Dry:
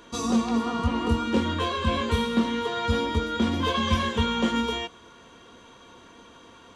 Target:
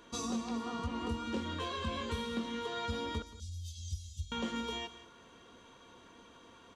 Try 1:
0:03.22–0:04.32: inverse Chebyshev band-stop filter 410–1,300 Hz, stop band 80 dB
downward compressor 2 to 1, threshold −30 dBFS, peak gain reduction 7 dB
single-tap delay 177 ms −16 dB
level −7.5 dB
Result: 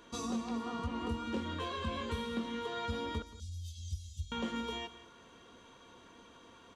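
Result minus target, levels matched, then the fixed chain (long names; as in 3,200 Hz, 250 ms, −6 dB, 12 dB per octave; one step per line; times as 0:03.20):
8,000 Hz band −3.0 dB
0:03.22–0:04.32: inverse Chebyshev band-stop filter 410–1,300 Hz, stop band 80 dB
downward compressor 2 to 1, threshold −30 dBFS, peak gain reduction 7 dB
dynamic equaliser 5,900 Hz, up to +4 dB, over −51 dBFS, Q 0.82
single-tap delay 177 ms −16 dB
level −7.5 dB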